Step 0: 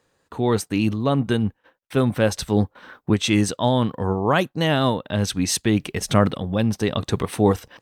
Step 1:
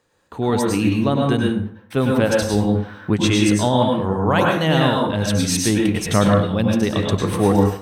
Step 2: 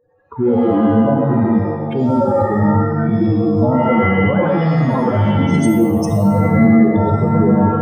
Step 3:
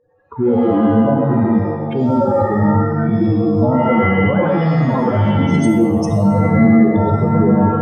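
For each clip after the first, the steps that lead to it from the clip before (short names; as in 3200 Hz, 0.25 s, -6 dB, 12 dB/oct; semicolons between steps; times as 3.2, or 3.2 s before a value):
plate-style reverb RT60 0.54 s, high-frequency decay 0.65×, pre-delay 90 ms, DRR -1 dB
spectral contrast raised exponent 3.7; maximiser +14 dB; shimmer reverb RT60 1 s, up +7 st, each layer -2 dB, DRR 6 dB; gain -9 dB
LPF 7600 Hz 12 dB/oct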